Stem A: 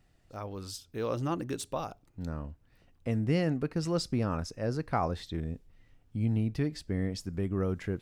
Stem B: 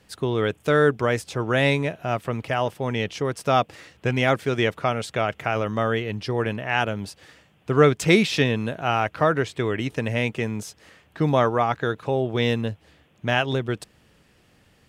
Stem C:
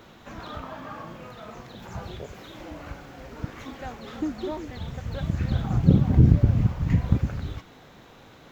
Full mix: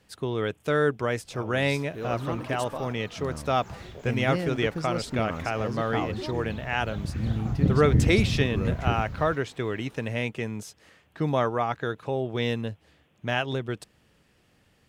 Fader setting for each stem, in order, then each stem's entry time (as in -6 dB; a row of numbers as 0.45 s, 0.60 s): -1.5 dB, -5.0 dB, -5.5 dB; 1.00 s, 0.00 s, 1.75 s